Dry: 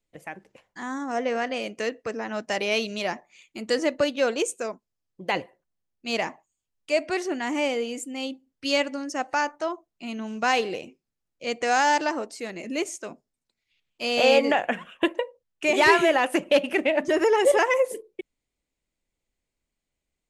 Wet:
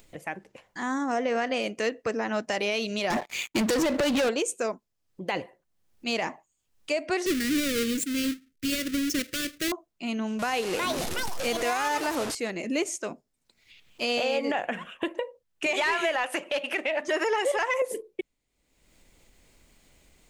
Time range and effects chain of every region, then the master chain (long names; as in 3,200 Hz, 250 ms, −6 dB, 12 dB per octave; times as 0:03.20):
0:03.10–0:04.29: downward compressor 10 to 1, threshold −31 dBFS + leveller curve on the samples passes 5
0:07.26–0:09.72: each half-wave held at its own peak + Butterworth band-reject 840 Hz, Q 0.64
0:10.39–0:12.35: linear delta modulator 64 kbit/s, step −28.5 dBFS + delay with pitch and tempo change per echo 377 ms, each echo +6 semitones, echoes 2, each echo −6 dB
0:15.66–0:17.82: high-pass filter 510 Hz 6 dB per octave + mid-hump overdrive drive 9 dB, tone 6,100 Hz, clips at −7 dBFS
whole clip: downward compressor, threshold −25 dBFS; brickwall limiter −20.5 dBFS; upward compression, threshold −44 dBFS; level +3 dB